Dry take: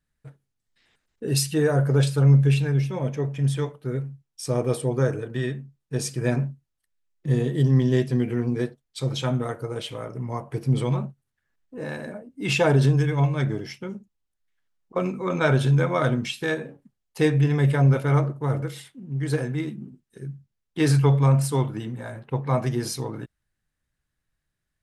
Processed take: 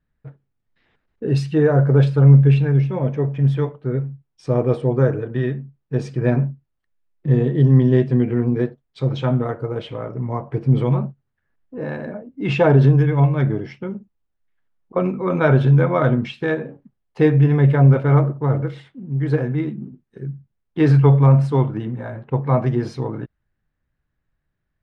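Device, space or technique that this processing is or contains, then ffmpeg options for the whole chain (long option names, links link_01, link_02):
phone in a pocket: -af "lowpass=3700,highshelf=frequency=2400:gain=-12,volume=6dB"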